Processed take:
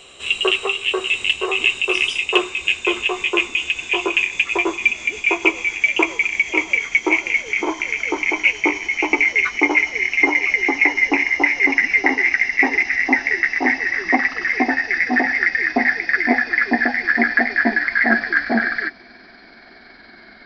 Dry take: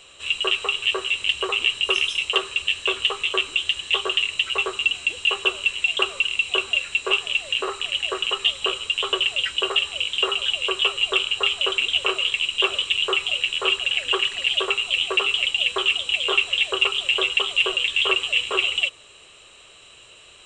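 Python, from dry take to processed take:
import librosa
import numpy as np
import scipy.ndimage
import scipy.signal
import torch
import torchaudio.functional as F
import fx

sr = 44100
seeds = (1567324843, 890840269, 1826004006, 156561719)

y = fx.pitch_glide(x, sr, semitones=-10.0, runs='starting unshifted')
y = fx.small_body(y, sr, hz=(230.0, 380.0, 710.0, 2100.0), ring_ms=25, db=7)
y = F.gain(torch.from_numpy(y), 3.5).numpy()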